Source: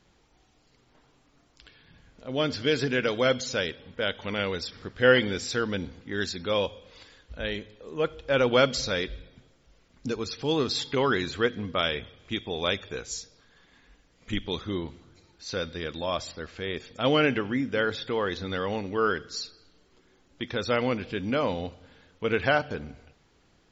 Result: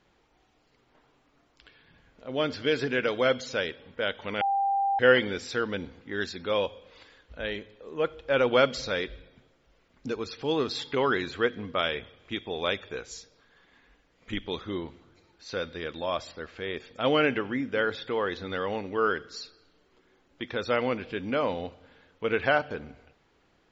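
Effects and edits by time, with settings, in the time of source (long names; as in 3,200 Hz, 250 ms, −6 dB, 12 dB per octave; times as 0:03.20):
0:04.41–0:04.99: beep over 792 Hz −22.5 dBFS
whole clip: bass and treble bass −6 dB, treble −9 dB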